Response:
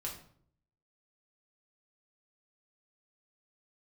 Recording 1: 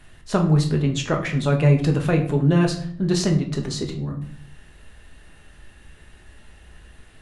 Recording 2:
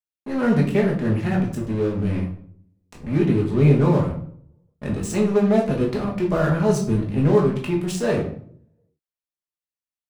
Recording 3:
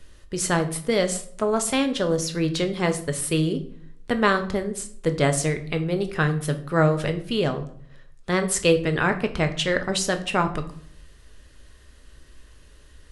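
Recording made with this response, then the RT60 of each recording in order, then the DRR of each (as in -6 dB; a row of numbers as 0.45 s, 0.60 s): 2; 0.60 s, 0.60 s, 0.60 s; 2.0 dB, -2.5 dB, 6.5 dB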